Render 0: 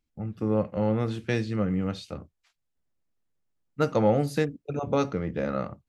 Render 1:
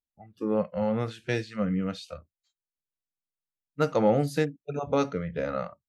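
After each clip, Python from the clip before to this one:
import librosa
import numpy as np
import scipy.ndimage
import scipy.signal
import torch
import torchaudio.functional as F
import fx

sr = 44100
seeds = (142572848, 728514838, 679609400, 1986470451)

y = fx.noise_reduce_blind(x, sr, reduce_db=20)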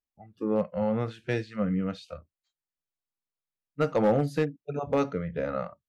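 y = fx.high_shelf(x, sr, hz=3900.0, db=-9.5)
y = np.clip(y, -10.0 ** (-16.0 / 20.0), 10.0 ** (-16.0 / 20.0))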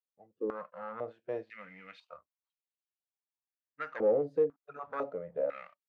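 y = fx.leveller(x, sr, passes=1)
y = fx.filter_held_bandpass(y, sr, hz=2.0, low_hz=470.0, high_hz=2800.0)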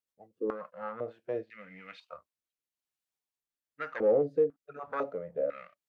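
y = fx.rotary_switch(x, sr, hz=7.5, then_hz=1.0, switch_at_s=0.38)
y = y * 10.0 ** (4.5 / 20.0)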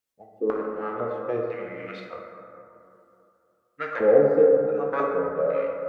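y = fx.rev_plate(x, sr, seeds[0], rt60_s=2.9, hf_ratio=0.3, predelay_ms=0, drr_db=-0.5)
y = y * 10.0 ** (6.0 / 20.0)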